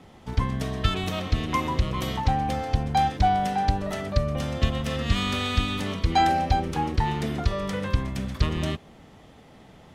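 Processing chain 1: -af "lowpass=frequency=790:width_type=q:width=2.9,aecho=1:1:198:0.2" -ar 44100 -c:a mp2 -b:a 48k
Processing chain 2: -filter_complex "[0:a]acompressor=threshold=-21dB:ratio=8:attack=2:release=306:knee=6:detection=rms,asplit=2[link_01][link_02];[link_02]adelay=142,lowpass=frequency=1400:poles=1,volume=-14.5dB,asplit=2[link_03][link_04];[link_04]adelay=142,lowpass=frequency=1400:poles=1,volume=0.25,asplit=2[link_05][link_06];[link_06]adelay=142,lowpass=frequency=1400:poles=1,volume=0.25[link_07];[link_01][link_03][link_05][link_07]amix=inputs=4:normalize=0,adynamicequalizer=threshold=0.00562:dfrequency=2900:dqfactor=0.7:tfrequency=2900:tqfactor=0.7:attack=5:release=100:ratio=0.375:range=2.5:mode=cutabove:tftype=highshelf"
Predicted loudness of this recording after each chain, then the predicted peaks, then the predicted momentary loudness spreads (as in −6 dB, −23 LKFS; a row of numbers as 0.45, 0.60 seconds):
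−21.0, −31.0 LKFS; −3.5, −15.5 dBFS; 13, 6 LU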